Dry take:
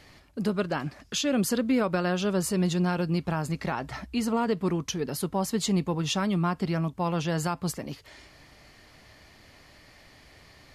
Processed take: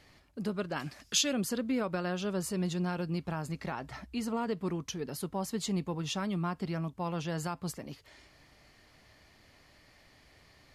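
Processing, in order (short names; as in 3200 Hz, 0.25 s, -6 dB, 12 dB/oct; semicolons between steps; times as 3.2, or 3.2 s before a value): 0.76–1.33 high shelf 2200 Hz +11.5 dB; gain -7 dB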